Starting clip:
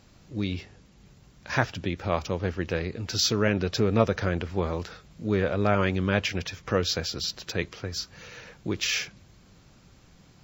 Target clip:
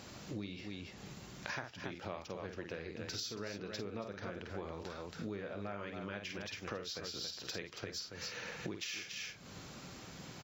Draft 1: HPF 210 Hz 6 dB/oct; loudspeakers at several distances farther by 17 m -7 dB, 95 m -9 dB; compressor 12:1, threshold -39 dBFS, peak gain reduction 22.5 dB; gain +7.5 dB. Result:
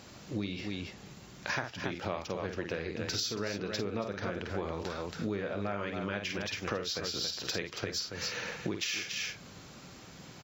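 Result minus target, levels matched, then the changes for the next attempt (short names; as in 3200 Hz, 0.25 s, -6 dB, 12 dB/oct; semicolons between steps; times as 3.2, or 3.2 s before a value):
compressor: peak gain reduction -8 dB
change: compressor 12:1, threshold -47.5 dBFS, peak gain reduction 30 dB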